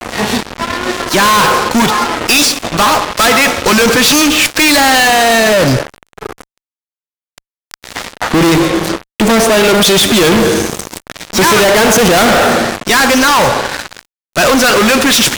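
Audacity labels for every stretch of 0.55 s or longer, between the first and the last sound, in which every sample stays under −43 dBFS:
6.580000	7.380000	silence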